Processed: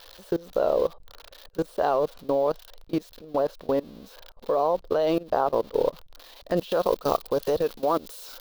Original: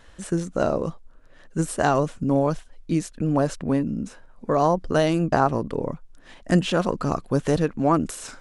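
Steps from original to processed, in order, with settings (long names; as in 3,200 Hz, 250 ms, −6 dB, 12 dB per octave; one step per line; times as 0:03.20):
spike at every zero crossing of −22.5 dBFS
octave-band graphic EQ 125/250/500/1,000/2,000/4,000/8,000 Hz −11/−6/+11/+5/−5/+11/−12 dB
output level in coarse steps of 22 dB
high-shelf EQ 3,700 Hz −8.5 dB, from 0:06.57 +2 dB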